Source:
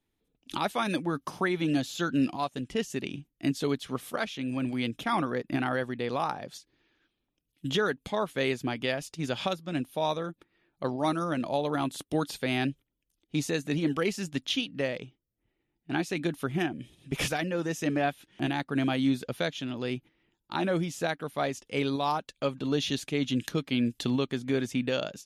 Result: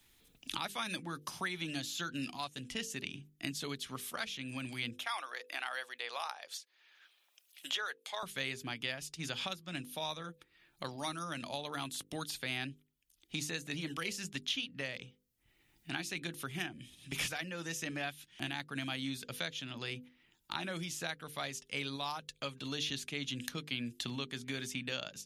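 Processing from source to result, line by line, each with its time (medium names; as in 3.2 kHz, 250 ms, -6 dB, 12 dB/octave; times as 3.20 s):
4.93–8.23 s: high-pass 520 Hz 24 dB/octave
whole clip: amplifier tone stack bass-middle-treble 5-5-5; hum notches 50/100/150/200/250/300/350/400/450/500 Hz; three bands compressed up and down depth 70%; trim +5 dB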